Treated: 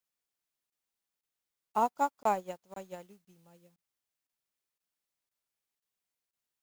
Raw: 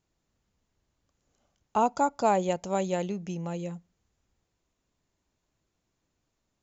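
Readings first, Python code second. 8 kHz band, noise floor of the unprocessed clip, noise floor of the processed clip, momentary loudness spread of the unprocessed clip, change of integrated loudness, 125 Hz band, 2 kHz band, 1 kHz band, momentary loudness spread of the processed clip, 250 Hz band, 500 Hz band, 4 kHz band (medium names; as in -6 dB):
no reading, -80 dBFS, under -85 dBFS, 11 LU, -3.5 dB, -19.0 dB, -6.5 dB, -4.0 dB, 17 LU, -12.5 dB, -9.0 dB, -11.5 dB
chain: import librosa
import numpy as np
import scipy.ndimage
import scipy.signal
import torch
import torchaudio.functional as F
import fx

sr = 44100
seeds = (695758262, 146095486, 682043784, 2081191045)

p1 = fx.highpass(x, sr, hz=120.0, slope=6)
p2 = fx.dmg_noise_colour(p1, sr, seeds[0], colour='white', level_db=-47.0)
p3 = 10.0 ** (-26.5 / 20.0) * np.tanh(p2 / 10.0 ** (-26.5 / 20.0))
p4 = p2 + (p3 * librosa.db_to_amplitude(-9.5))
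p5 = fx.dynamic_eq(p4, sr, hz=1100.0, q=1.3, threshold_db=-38.0, ratio=4.0, max_db=5)
p6 = fx.buffer_crackle(p5, sr, first_s=0.7, period_s=0.51, block=1024, kind='zero')
p7 = fx.upward_expand(p6, sr, threshold_db=-43.0, expansion=2.5)
y = p7 * librosa.db_to_amplitude(-6.5)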